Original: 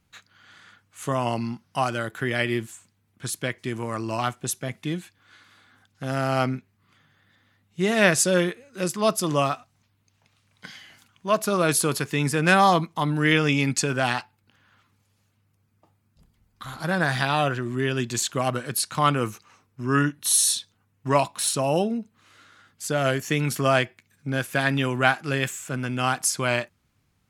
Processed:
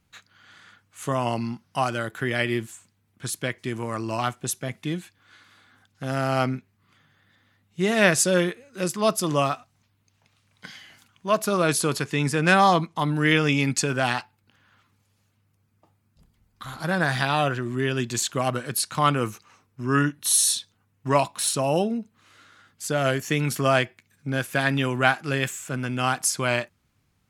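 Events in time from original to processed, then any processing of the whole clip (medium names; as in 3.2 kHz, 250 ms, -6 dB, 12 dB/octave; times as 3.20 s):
11.60–12.99 s: low-pass 10 kHz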